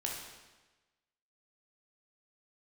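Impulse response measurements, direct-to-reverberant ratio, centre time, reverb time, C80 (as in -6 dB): -2.0 dB, 59 ms, 1.2 s, 4.5 dB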